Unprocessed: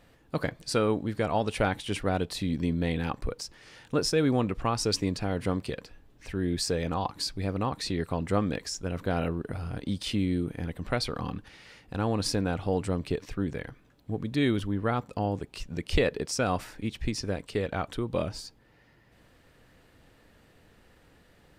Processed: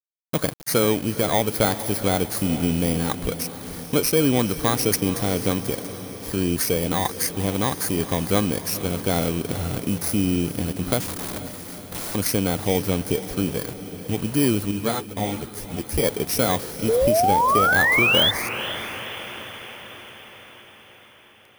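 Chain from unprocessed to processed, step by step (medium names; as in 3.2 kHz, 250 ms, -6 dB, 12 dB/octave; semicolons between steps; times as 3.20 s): bit-reversed sample order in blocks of 16 samples; high-pass 94 Hz 6 dB/octave; in parallel at 0 dB: compression 20:1, threshold -35 dBFS, peak gain reduction 16 dB; 11.00–12.15 s: on the sum: integer overflow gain 31 dB; 16.88–18.31 s: painted sound rise 430–3600 Hz -23 dBFS; bit crusher 7-bit; echo that smears into a reverb 471 ms, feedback 61%, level -12.5 dB; 14.71–16.04 s: three-phase chorus; trim +4.5 dB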